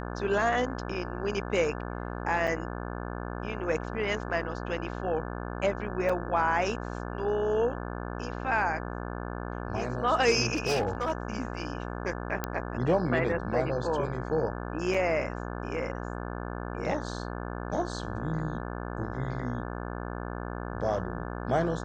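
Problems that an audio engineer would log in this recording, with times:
buzz 60 Hz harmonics 29 -36 dBFS
2.47–2.48 gap 5.4 ms
6.09 gap 4.6 ms
10.54–11.12 clipped -23 dBFS
12.44 pop -14 dBFS
14.94 gap 3.6 ms

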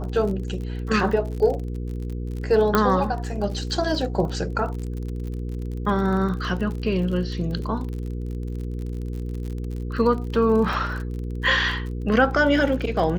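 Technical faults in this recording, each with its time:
crackle 40/s -31 dBFS
hum 60 Hz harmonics 8 -29 dBFS
2.75 pop -6 dBFS
10.73 gap 3 ms

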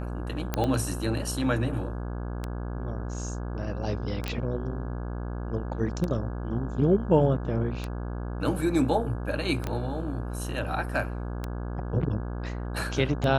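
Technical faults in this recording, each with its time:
buzz 60 Hz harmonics 28 -33 dBFS
tick 33 1/3 rpm -17 dBFS
0.54 pop -12 dBFS
4.28 pop -15 dBFS
9.67 pop -17 dBFS

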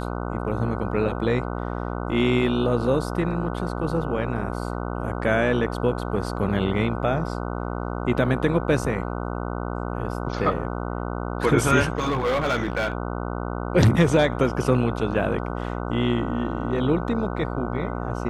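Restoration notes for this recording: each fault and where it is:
buzz 60 Hz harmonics 25 -29 dBFS
11.97–12.93 clipped -19 dBFS

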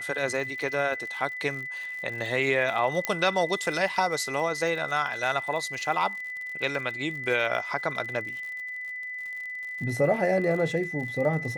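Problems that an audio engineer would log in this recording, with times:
crackle 64/s -36 dBFS
tone 2000 Hz -33 dBFS
3.05 pop -9 dBFS

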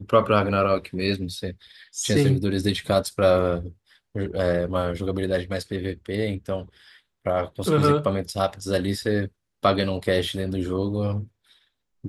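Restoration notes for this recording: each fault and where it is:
7.64 gap 2.8 ms

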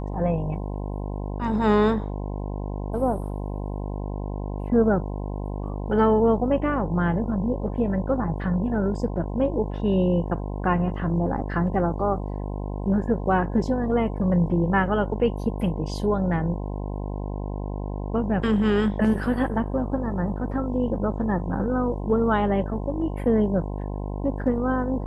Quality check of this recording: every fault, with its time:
buzz 50 Hz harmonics 21 -30 dBFS

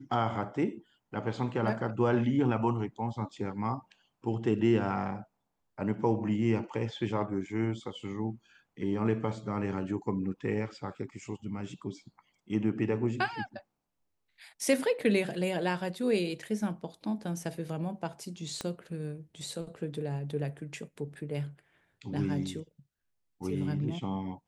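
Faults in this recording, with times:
18.61 pop -20 dBFS

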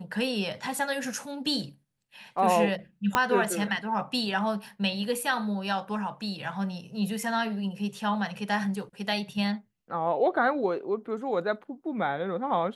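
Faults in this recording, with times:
3.15 pop -8 dBFS

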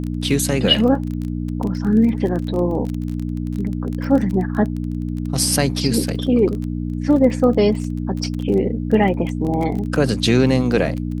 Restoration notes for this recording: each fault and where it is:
crackle 20/s -24 dBFS
hum 60 Hz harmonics 5 -24 dBFS

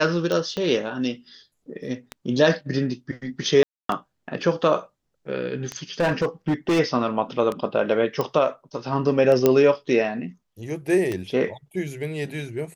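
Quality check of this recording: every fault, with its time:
tick 33 1/3 rpm -14 dBFS
0.57 pop -16 dBFS
3.63–3.89 gap 0.263 s
6–6.8 clipped -17 dBFS
8.21 pop -12 dBFS
9.46 pop -4 dBFS

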